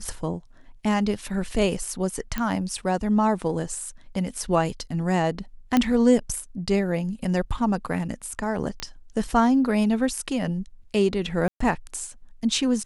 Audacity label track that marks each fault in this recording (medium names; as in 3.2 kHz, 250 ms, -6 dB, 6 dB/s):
2.380000	2.380000	pop -13 dBFS
5.770000	5.770000	pop -7 dBFS
8.800000	8.800000	pop -14 dBFS
11.480000	11.600000	dropout 124 ms